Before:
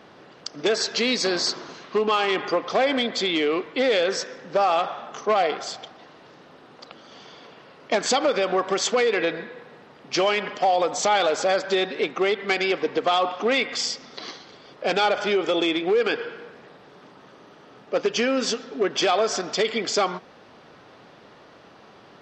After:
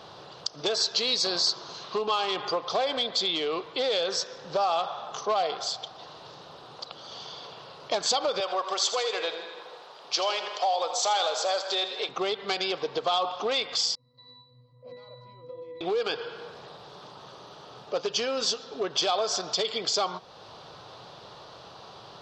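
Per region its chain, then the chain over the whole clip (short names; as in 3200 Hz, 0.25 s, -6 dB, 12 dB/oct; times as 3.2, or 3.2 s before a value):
8.4–12.09 HPF 500 Hz + split-band echo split 550 Hz, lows 0.113 s, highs 80 ms, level -11.5 dB
13.95–15.81 tone controls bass +11 dB, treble 0 dB + octave resonator B, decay 0.66 s
whole clip: ten-band EQ 125 Hz +4 dB, 250 Hz -12 dB, 1000 Hz +4 dB, 2000 Hz -11 dB, 4000 Hz +9 dB; compressor 1.5:1, threshold -42 dBFS; gain +3.5 dB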